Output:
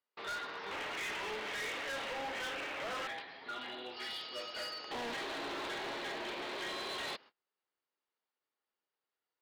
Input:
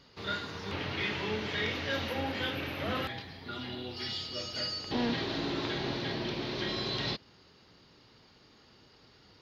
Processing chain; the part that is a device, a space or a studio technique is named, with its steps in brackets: walkie-talkie (band-pass 570–2700 Hz; hard clipper -39 dBFS, distortion -8 dB; gate -58 dBFS, range -31 dB); trim +2 dB

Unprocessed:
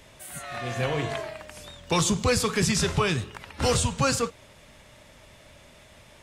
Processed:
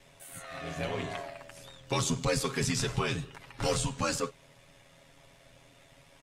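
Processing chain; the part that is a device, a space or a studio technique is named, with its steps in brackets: ring-modulated robot voice (ring modulator 41 Hz; comb 7.3 ms); trim -5 dB

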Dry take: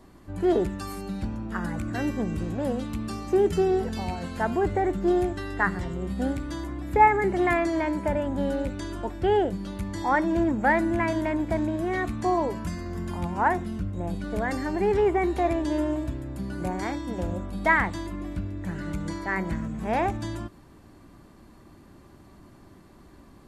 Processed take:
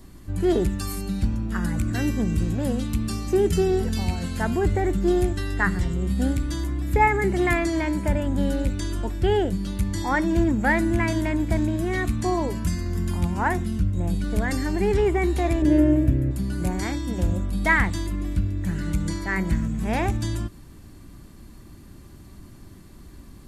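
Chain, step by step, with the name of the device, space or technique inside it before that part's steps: smiley-face EQ (bass shelf 88 Hz +7 dB; peaking EQ 750 Hz -8.5 dB 2.3 oct; treble shelf 6.8 kHz +7 dB); 15.62–16.31 s: graphic EQ 125/250/500/1000/2000/4000/8000 Hz +7/+4/+10/-6/+5/-9/-8 dB; trim +5.5 dB

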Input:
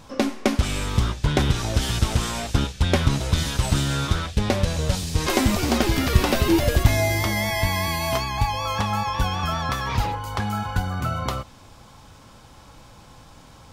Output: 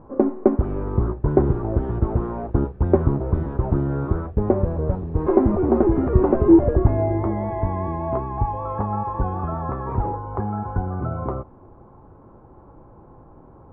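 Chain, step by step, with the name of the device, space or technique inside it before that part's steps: under water (low-pass 1.1 kHz 24 dB/octave; peaking EQ 370 Hz +11.5 dB 0.47 oct)

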